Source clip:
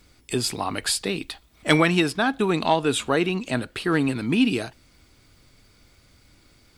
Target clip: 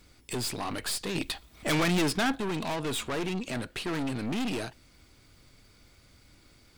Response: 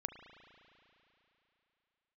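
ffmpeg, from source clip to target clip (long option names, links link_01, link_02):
-filter_complex "[0:a]aeval=exprs='(tanh(28.2*val(0)+0.5)-tanh(0.5))/28.2':channel_layout=same,asettb=1/sr,asplit=3[link_01][link_02][link_03];[link_01]atrim=end=1.154[link_04];[link_02]atrim=start=1.15:end=2.36,asetpts=PTS-STARTPTS,afade=type=in:duration=0.004:curve=qsin,afade=type=out:start_time=1.206:duration=0.004:curve=qsin,acontrast=28[link_05];[link_03]atrim=start=2.356[link_06];[link_04][link_05]acrossfade=duration=0.004:curve1=hsin:curve2=qsin[link_07];[link_07][link_06]acrossfade=duration=0.004:curve1=qsin:curve2=hsin"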